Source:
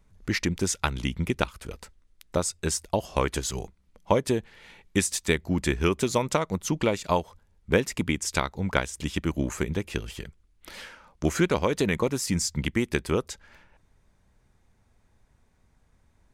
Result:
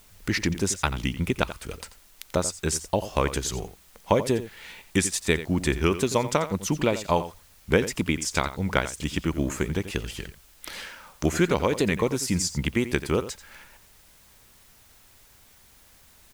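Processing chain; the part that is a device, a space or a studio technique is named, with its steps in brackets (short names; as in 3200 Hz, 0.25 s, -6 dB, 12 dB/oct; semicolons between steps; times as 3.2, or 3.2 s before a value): noise-reduction cassette on a plain deck (mismatched tape noise reduction encoder only; wow and flutter; white noise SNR 29 dB); outdoor echo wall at 15 m, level -13 dB; gain +1 dB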